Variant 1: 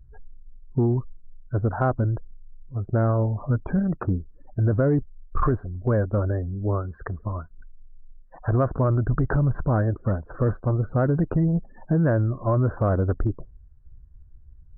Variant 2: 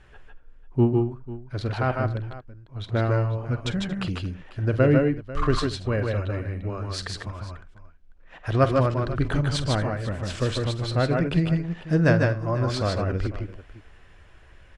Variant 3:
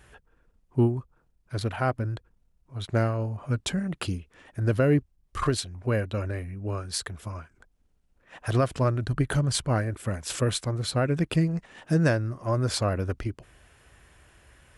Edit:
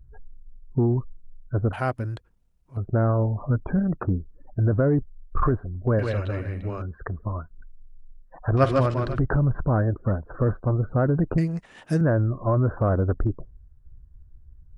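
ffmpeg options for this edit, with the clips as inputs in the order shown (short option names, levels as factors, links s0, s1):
-filter_complex "[2:a]asplit=2[s0][s1];[1:a]asplit=2[s2][s3];[0:a]asplit=5[s4][s5][s6][s7][s8];[s4]atrim=end=1.732[s9];[s0]atrim=start=1.728:end=2.772[s10];[s5]atrim=start=2.768:end=5.992[s11];[s2]atrim=start=5.988:end=6.822[s12];[s6]atrim=start=6.818:end=8.572[s13];[s3]atrim=start=8.568:end=9.192[s14];[s7]atrim=start=9.188:end=11.382[s15];[s1]atrim=start=11.378:end=12.012[s16];[s8]atrim=start=12.008[s17];[s9][s10]acrossfade=d=0.004:c1=hsin:c2=hsin[s18];[s18][s11]acrossfade=d=0.004:c1=hsin:c2=hsin[s19];[s19][s12]acrossfade=d=0.004:c1=hsin:c2=hsin[s20];[s20][s13]acrossfade=d=0.004:c1=hsin:c2=hsin[s21];[s21][s14]acrossfade=d=0.004:c1=hsin:c2=hsin[s22];[s22][s15]acrossfade=d=0.004:c1=hsin:c2=hsin[s23];[s23][s16]acrossfade=d=0.004:c1=hsin:c2=hsin[s24];[s24][s17]acrossfade=d=0.004:c1=hsin:c2=hsin"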